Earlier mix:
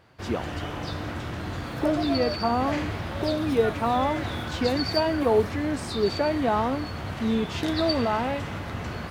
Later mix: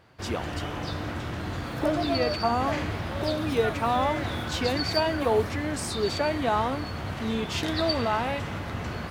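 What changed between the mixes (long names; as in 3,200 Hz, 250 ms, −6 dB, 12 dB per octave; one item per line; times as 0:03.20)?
speech: add spectral tilt +2.5 dB per octave
reverb: on, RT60 1.1 s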